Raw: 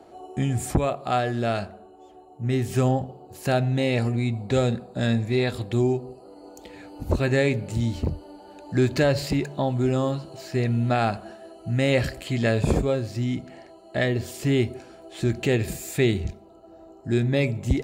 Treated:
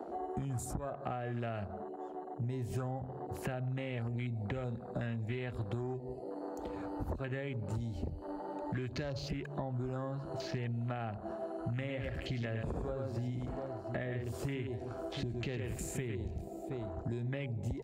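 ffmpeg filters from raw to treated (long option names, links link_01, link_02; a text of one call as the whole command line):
ffmpeg -i in.wav -filter_complex "[0:a]asettb=1/sr,asplit=3[link_01][link_02][link_03];[link_01]atrim=end=11.324[link_04];[link_02]atrim=start=11.32:end=17.09,asetpts=PTS-STARTPTS,afade=type=in:duration=0.004:curve=qsin,afade=type=out:start_time=5.766:duration=0.004:curve=qsin,aecho=1:1:106|718:0.531|0.106,atrim=end_sample=254457[link_05];[link_03]atrim=start=17.086[link_06];[link_04][link_05]acrossfade=duration=0.004:curve1=hsin:curve2=qsin[link_07];[link_07][link_06]acrossfade=duration=0.004:curve1=qsin:curve2=hsin,acompressor=threshold=-31dB:ratio=6,afwtdn=0.00562,acrossover=split=87|750[link_08][link_09][link_10];[link_08]acompressor=threshold=-49dB:ratio=4[link_11];[link_09]acompressor=threshold=-47dB:ratio=4[link_12];[link_10]acompressor=threshold=-52dB:ratio=4[link_13];[link_11][link_12][link_13]amix=inputs=3:normalize=0,volume=6.5dB" out.wav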